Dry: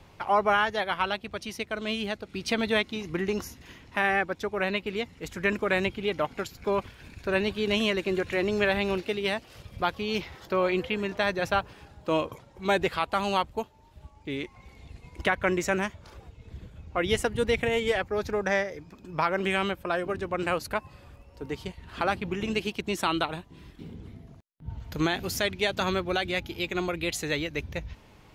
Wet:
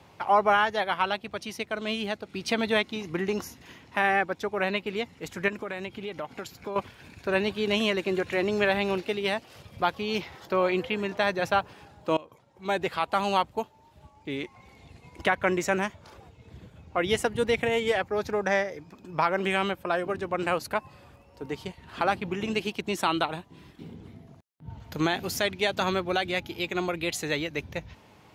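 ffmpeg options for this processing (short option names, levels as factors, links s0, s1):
-filter_complex "[0:a]asettb=1/sr,asplit=3[s0][s1][s2];[s0]atrim=end=5.484[s3];[s1]atrim=start=5.48:end=6.76,asetpts=PTS-STARTPTS,afade=t=in:d=0.004:c=qsin,afade=t=out:st=1.276:d=0.004:c=qsin,acompressor=threshold=0.02:ratio=3:attack=3.2:release=140:knee=1:detection=peak[s4];[s2]atrim=start=6.756[s5];[s3][s4]acrossfade=d=0.004:c1=hsin:c2=qsin[s6];[s6][s5]acrossfade=d=0.004:c1=qsin:c2=hsin,asplit=2[s7][s8];[s7]atrim=end=12.17,asetpts=PTS-STARTPTS,afade=t=out:st=12.166:d=0.004:c=hsin:silence=0.0891251[s9];[s8]atrim=start=12.17,asetpts=PTS-STARTPTS,afade=t=in:d=0.98:silence=0.0891251[s10];[s9][s10]concat=n=2:v=0:a=1,highpass=100,equalizer=f=810:t=o:w=0.77:g=3"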